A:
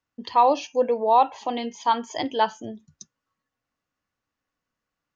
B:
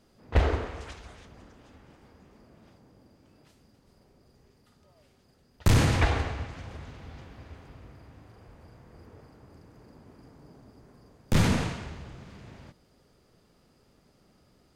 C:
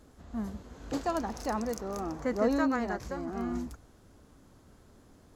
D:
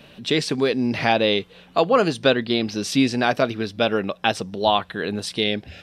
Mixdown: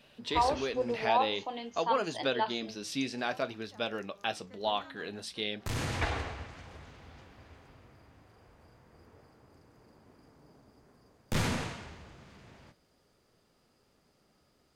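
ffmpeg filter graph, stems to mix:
-filter_complex "[0:a]volume=-5dB[a];[1:a]volume=1dB[b];[2:a]equalizer=f=3.4k:w=0.94:g=10,adelay=2250,volume=-19dB[c];[3:a]volume=-7.5dB,asplit=2[d][e];[e]apad=whole_len=650701[f];[b][f]sidechaincompress=threshold=-31dB:ratio=10:attack=10:release=727[g];[a][g][c][d]amix=inputs=4:normalize=0,flanger=delay=7.9:depth=6.3:regen=-70:speed=0.52:shape=sinusoidal,lowshelf=f=350:g=-6.5"

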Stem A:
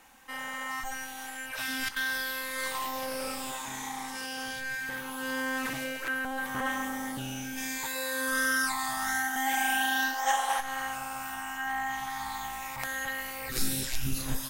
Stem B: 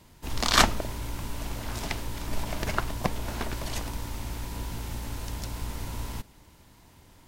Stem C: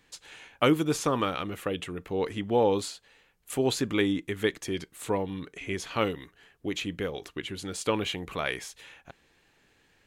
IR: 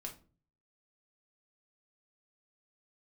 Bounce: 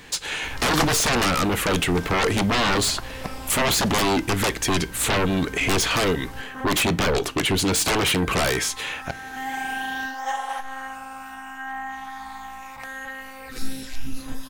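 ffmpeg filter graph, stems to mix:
-filter_complex "[0:a]highshelf=f=6.5k:g=-11.5,aecho=1:1:3.9:0.47,volume=-3.5dB,asplit=2[a][b];[b]volume=-9dB[c];[1:a]adelay=200,volume=-5dB[d];[2:a]alimiter=limit=-17.5dB:level=0:latency=1:release=487,aeval=exprs='0.133*sin(PI/2*6.31*val(0)/0.133)':c=same,volume=-1.5dB,asplit=3[e][f][g];[f]volume=-9.5dB[h];[g]apad=whole_len=639396[i];[a][i]sidechaincompress=threshold=-42dB:ratio=8:attack=16:release=264[j];[3:a]atrim=start_sample=2205[k];[c][h]amix=inputs=2:normalize=0[l];[l][k]afir=irnorm=-1:irlink=0[m];[j][d][e][m]amix=inputs=4:normalize=0"

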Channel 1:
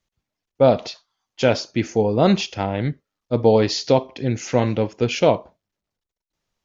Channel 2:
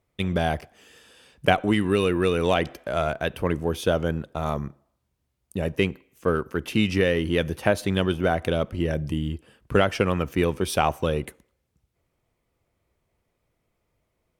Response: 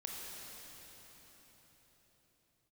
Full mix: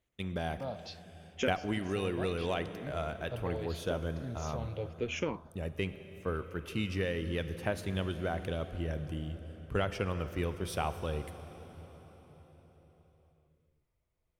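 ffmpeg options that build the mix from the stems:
-filter_complex "[0:a]acompressor=threshold=-27dB:ratio=2,asplit=2[a][b];[b]afreqshift=-0.8[c];[a][c]amix=inputs=2:normalize=1,volume=-2.5dB[d];[1:a]volume=-14dB,asplit=3[e][f][g];[f]volume=-6dB[h];[g]apad=whole_len=293242[i];[d][i]sidechaincompress=threshold=-42dB:ratio=8:attack=16:release=1060[j];[2:a]atrim=start_sample=2205[k];[h][k]afir=irnorm=-1:irlink=0[l];[j][e][l]amix=inputs=3:normalize=0,asubboost=boost=2:cutoff=120"

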